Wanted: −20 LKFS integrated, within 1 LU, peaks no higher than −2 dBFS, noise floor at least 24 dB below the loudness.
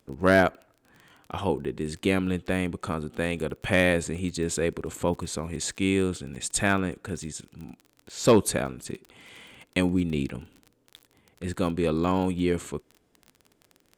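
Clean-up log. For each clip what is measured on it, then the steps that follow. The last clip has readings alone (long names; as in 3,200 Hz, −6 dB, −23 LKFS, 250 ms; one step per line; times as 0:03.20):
crackle rate 25 per second; integrated loudness −26.5 LKFS; sample peak −10.0 dBFS; target loudness −20.0 LKFS
→ click removal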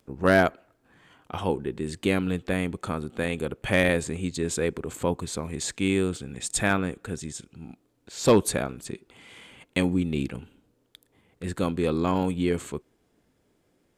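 crackle rate 0.14 per second; integrated loudness −27.0 LKFS; sample peak −10.0 dBFS; target loudness −20.0 LKFS
→ level +7 dB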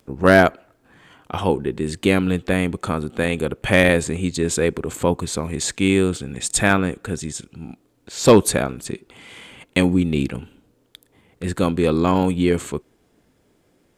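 integrated loudness −20.0 LKFS; sample peak −3.0 dBFS; background noise floor −62 dBFS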